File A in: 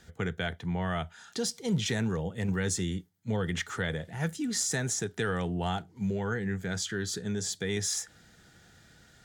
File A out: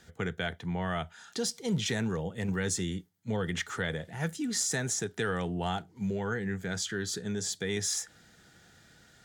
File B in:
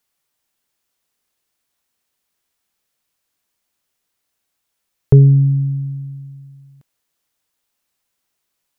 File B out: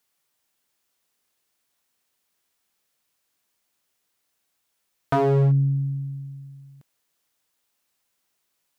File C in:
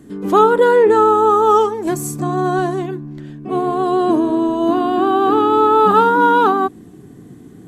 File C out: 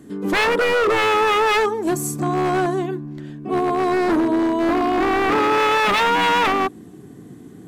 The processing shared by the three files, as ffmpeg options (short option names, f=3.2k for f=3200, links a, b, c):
-af "aeval=exprs='0.266*(abs(mod(val(0)/0.266+3,4)-2)-1)':c=same,lowshelf=f=95:g=-6.5,acontrast=49,volume=-6dB"